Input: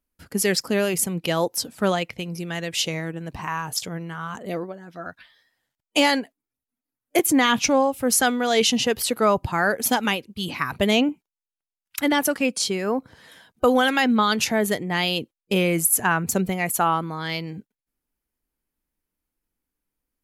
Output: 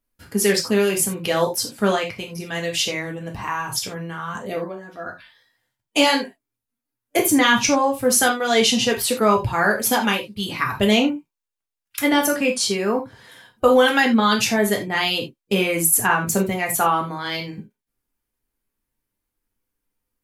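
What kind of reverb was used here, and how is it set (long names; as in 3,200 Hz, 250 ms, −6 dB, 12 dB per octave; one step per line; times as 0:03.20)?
reverb whose tail is shaped and stops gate 110 ms falling, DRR 0 dB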